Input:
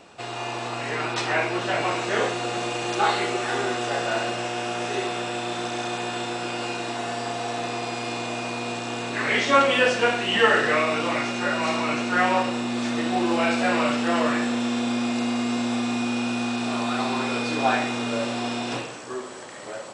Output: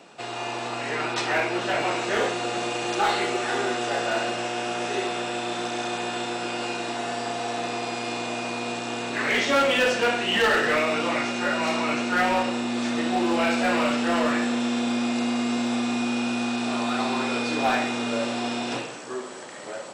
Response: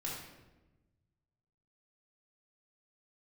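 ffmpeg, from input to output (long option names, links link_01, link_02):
-af "highpass=frequency=130:width=0.5412,highpass=frequency=130:width=1.3066,bandreject=frequency=1100:width=25,asoftclip=type=hard:threshold=-16.5dB"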